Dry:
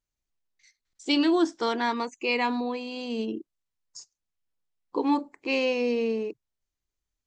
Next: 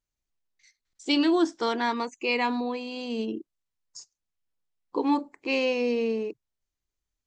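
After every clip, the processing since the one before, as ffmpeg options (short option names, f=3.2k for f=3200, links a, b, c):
-af anull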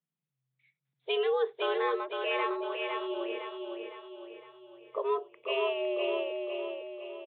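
-af "afreqshift=130,aecho=1:1:508|1016|1524|2032|2540|3048:0.631|0.297|0.139|0.0655|0.0308|0.0145,aresample=8000,aresample=44100,volume=-6dB"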